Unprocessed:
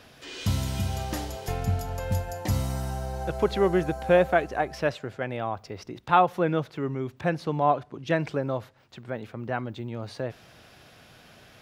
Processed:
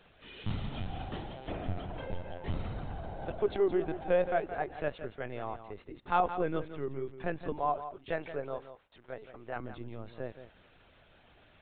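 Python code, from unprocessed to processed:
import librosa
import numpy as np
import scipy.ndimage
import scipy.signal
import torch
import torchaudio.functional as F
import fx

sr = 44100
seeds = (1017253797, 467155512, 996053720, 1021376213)

y = np.repeat(x[::3], 3)[:len(x)]
y = fx.highpass(y, sr, hz=320.0, slope=12, at=(7.54, 9.55), fade=0.02)
y = fx.dynamic_eq(y, sr, hz=410.0, q=4.0, threshold_db=-42.0, ratio=4.0, max_db=4)
y = fx.lpc_vocoder(y, sr, seeds[0], excitation='pitch_kept', order=16)
y = y + 10.0 ** (-11.5 / 20.0) * np.pad(y, (int(170 * sr / 1000.0), 0))[:len(y)]
y = F.gain(torch.from_numpy(y), -8.5).numpy()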